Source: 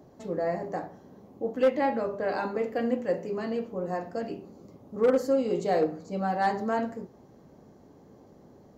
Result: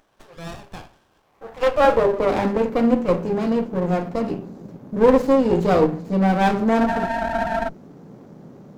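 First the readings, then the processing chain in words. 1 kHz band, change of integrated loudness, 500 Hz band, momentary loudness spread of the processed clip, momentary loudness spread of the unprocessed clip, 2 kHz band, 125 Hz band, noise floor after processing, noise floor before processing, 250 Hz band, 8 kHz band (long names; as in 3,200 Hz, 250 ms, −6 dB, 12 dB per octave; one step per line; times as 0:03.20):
+8.5 dB, +9.0 dB, +8.0 dB, 16 LU, 12 LU, +9.0 dB, +14.0 dB, −61 dBFS, −55 dBFS, +11.0 dB, can't be measured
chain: healed spectral selection 0:06.83–0:07.66, 520–1,100 Hz before
high-pass filter sweep 1,800 Hz → 150 Hz, 0:01.22–0:02.58
windowed peak hold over 17 samples
level +8 dB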